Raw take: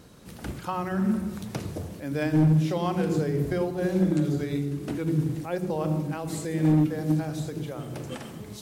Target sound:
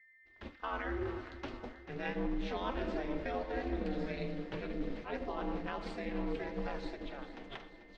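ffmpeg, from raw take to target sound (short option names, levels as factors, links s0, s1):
-af "highpass=f=180:p=1,agate=range=0.0224:threshold=0.0282:ratio=3:detection=peak,lowpass=f=3700:w=0.5412,lowpass=f=3700:w=1.3066,equalizer=f=290:t=o:w=2.5:g=-7.5,areverse,acompressor=threshold=0.0224:ratio=6,areverse,aeval=exprs='val(0)+0.001*sin(2*PI*1800*n/s)':c=same,aeval=exprs='val(0)*sin(2*PI*130*n/s)':c=same,asetrate=47628,aresample=44100,flanger=delay=1.4:depth=6.8:regen=-41:speed=0.3:shape=triangular,aecho=1:1:440|880|1320|1760|2200:0.224|0.119|0.0629|0.0333|0.0177,volume=2.11"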